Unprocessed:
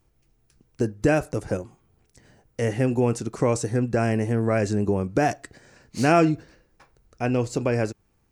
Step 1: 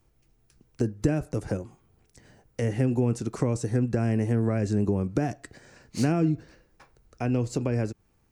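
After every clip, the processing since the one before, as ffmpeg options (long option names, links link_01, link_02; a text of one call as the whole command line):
ffmpeg -i in.wav -filter_complex "[0:a]acrossover=split=320[link_01][link_02];[link_02]acompressor=threshold=-31dB:ratio=8[link_03];[link_01][link_03]amix=inputs=2:normalize=0" out.wav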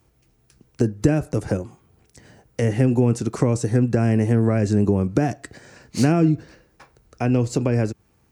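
ffmpeg -i in.wav -af "highpass=53,volume=6.5dB" out.wav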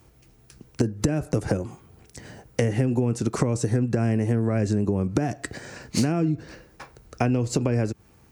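ffmpeg -i in.wav -af "acompressor=threshold=-25dB:ratio=10,volume=6dB" out.wav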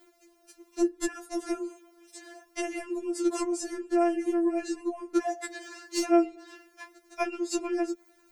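ffmpeg -i in.wav -af "afftfilt=real='re*4*eq(mod(b,16),0)':imag='im*4*eq(mod(b,16),0)':win_size=2048:overlap=0.75" out.wav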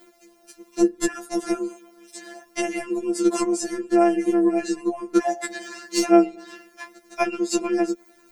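ffmpeg -i in.wav -af "tremolo=f=140:d=0.333,volume=8.5dB" out.wav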